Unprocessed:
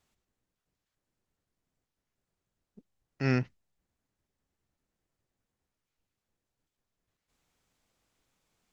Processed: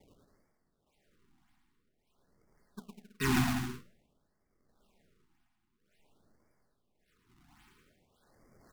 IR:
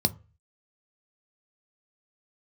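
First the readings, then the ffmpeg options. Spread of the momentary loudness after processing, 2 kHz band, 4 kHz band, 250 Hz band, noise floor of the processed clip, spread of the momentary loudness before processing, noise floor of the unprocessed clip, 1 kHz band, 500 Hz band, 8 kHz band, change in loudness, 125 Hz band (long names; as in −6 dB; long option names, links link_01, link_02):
14 LU, +2.5 dB, +9.0 dB, +1.5 dB, −79 dBFS, 9 LU, below −85 dBFS, +6.5 dB, −4.0 dB, can't be measured, −0.5 dB, −2.5 dB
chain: -filter_complex "[0:a]equalizer=frequency=2500:width=0.71:gain=9,bandreject=frequency=60:width_type=h:width=6,bandreject=frequency=120:width_type=h:width=6,bandreject=frequency=180:width_type=h:width=6,bandreject=frequency=240:width_type=h:width=6,bandreject=frequency=300:width_type=h:width=6,bandreject=frequency=360:width_type=h:width=6,bandreject=frequency=420:width_type=h:width=6,aecho=1:1:4.8:0.87,tremolo=f=0.81:d=0.74,acrossover=split=2900[link_01][link_02];[link_01]asoftclip=type=tanh:threshold=-30dB[link_03];[link_03][link_02]amix=inputs=2:normalize=0,acrusher=samples=31:mix=1:aa=0.000001:lfo=1:lforange=49.6:lforate=1.8,asplit=2[link_04][link_05];[link_05]aeval=exprs='0.0133*(abs(mod(val(0)/0.0133+3,4)-2)-1)':channel_layout=same,volume=-8dB[link_06];[link_04][link_06]amix=inputs=2:normalize=0,aecho=1:1:110|198|268.4|324.7|369.8:0.631|0.398|0.251|0.158|0.1,afftfilt=real='re*(1-between(b*sr/1024,470*pow(3300/470,0.5+0.5*sin(2*PI*0.5*pts/sr))/1.41,470*pow(3300/470,0.5+0.5*sin(2*PI*0.5*pts/sr))*1.41))':imag='im*(1-between(b*sr/1024,470*pow(3300/470,0.5+0.5*sin(2*PI*0.5*pts/sr))/1.41,470*pow(3300/470,0.5+0.5*sin(2*PI*0.5*pts/sr))*1.41))':win_size=1024:overlap=0.75,volume=5.5dB"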